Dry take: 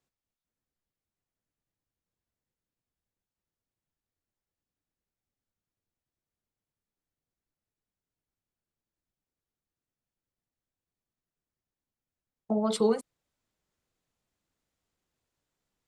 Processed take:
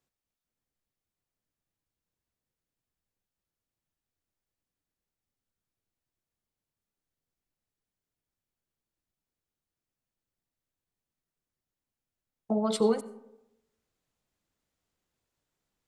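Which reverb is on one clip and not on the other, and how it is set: digital reverb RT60 0.9 s, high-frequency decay 0.45×, pre-delay 45 ms, DRR 16.5 dB

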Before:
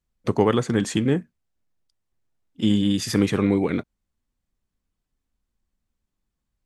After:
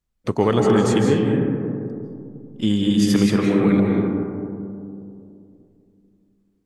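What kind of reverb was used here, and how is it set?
digital reverb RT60 2.7 s, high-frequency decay 0.25×, pre-delay 0.12 s, DRR -0.5 dB

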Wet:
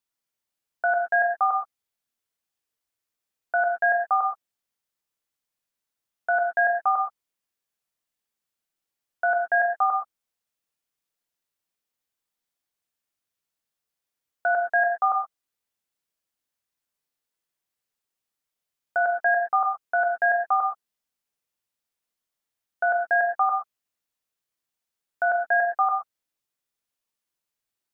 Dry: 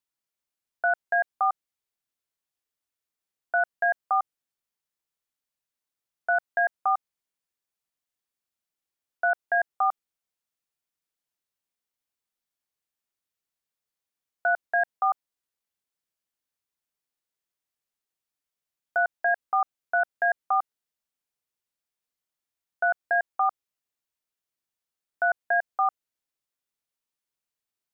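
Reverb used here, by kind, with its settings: non-linear reverb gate 0.15 s flat, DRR 3 dB; gain +1 dB

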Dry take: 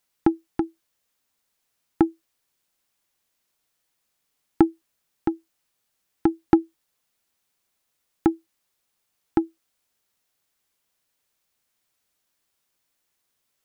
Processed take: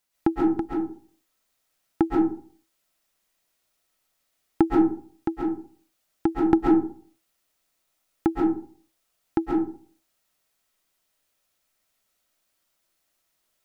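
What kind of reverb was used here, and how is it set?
digital reverb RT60 0.48 s, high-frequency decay 0.45×, pre-delay 95 ms, DRR -4 dB; gain -3 dB

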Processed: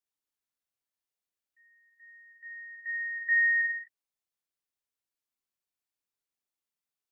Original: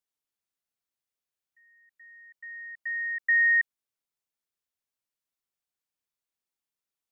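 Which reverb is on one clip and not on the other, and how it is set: non-linear reverb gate 0.28 s falling, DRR 3 dB; gain -4.5 dB

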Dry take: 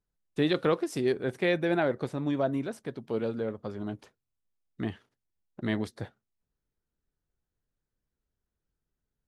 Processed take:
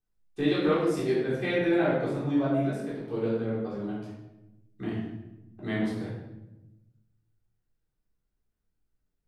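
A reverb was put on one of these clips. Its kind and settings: shoebox room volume 390 m³, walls mixed, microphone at 3.7 m; gain -9 dB

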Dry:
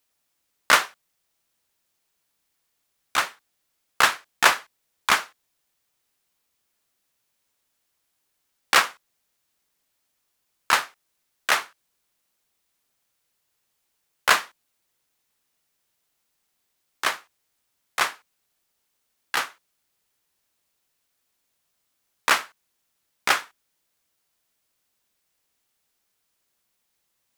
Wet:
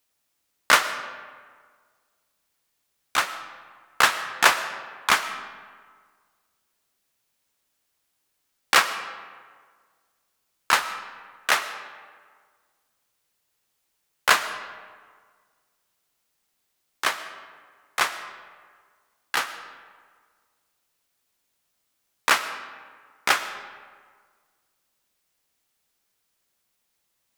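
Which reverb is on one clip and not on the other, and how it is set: digital reverb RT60 1.7 s, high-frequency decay 0.6×, pre-delay 70 ms, DRR 11.5 dB

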